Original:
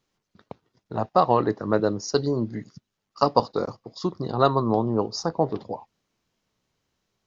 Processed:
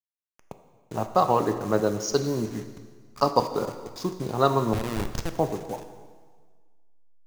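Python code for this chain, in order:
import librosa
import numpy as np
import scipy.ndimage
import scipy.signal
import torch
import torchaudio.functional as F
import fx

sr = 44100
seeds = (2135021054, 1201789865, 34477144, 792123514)

y = fx.delta_hold(x, sr, step_db=-37.5)
y = fx.peak_eq(y, sr, hz=6400.0, db=7.5, octaves=0.35)
y = fx.schmitt(y, sr, flips_db=-20.5, at=(4.73, 5.33))
y = fx.rev_plate(y, sr, seeds[0], rt60_s=1.6, hf_ratio=0.95, predelay_ms=0, drr_db=7.5)
y = y * 10.0 ** (-2.0 / 20.0)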